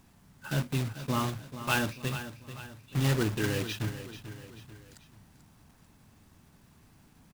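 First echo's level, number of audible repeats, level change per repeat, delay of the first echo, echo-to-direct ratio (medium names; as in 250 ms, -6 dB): -12.0 dB, 3, -6.5 dB, 439 ms, -11.0 dB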